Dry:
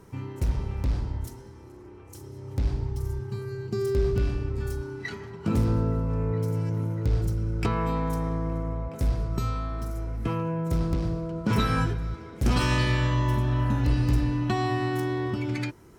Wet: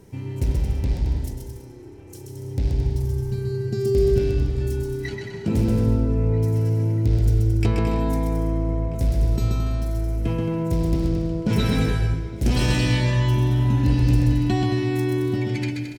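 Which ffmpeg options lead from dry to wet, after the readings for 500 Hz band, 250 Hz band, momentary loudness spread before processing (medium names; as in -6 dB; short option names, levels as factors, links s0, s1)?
+5.5 dB, +5.5 dB, 11 LU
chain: -af "equalizer=f=1200:w=2.1:g=-13.5,aecho=1:1:130|221|284.7|329.3|360.5:0.631|0.398|0.251|0.158|0.1,volume=1.41"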